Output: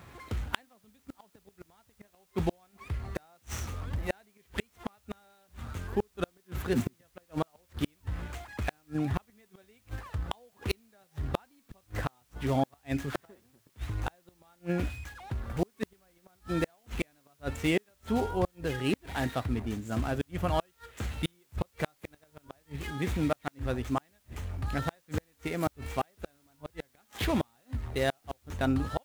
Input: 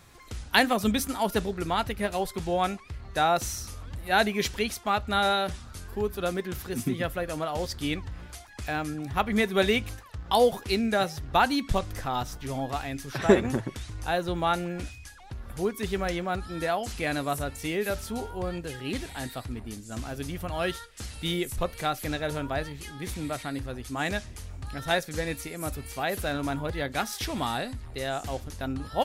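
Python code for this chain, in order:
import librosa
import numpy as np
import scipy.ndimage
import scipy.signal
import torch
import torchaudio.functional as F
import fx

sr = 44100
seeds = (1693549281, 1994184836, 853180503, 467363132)

y = scipy.ndimage.median_filter(x, 9, mode='constant')
y = scipy.signal.sosfilt(scipy.signal.butter(4, 48.0, 'highpass', fs=sr, output='sos'), y)
y = fx.gate_flip(y, sr, shuts_db=-22.0, range_db=-42)
y = fx.dmg_noise_colour(y, sr, seeds[0], colour='white', level_db=-76.0)
y = y * librosa.db_to_amplitude(5.0)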